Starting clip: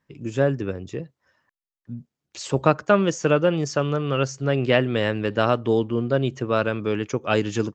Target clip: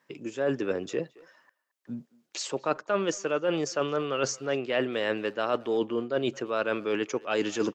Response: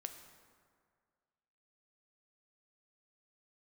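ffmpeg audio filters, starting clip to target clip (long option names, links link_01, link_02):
-filter_complex "[0:a]highpass=330,areverse,acompressor=threshold=-32dB:ratio=6,areverse,asplit=2[link_01][link_02];[link_02]adelay=220,highpass=300,lowpass=3400,asoftclip=type=hard:threshold=-34dB,volume=-20dB[link_03];[link_01][link_03]amix=inputs=2:normalize=0,volume=7dB"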